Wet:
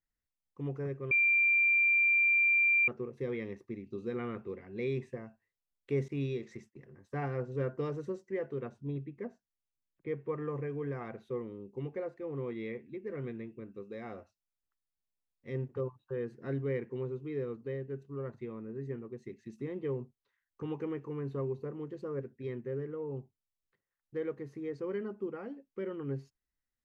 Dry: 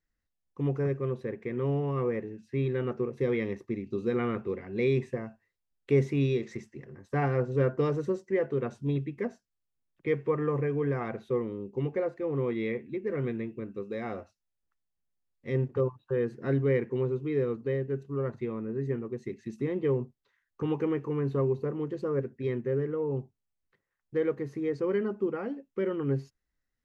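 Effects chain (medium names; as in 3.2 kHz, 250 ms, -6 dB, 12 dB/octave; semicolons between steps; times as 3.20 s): 1.11–2.88 s: bleep 2.37 kHz -15 dBFS; 6.08–6.84 s: gate -46 dBFS, range -22 dB; 8.69–10.29 s: treble shelf 2.2 kHz -9.5 dB; trim -8 dB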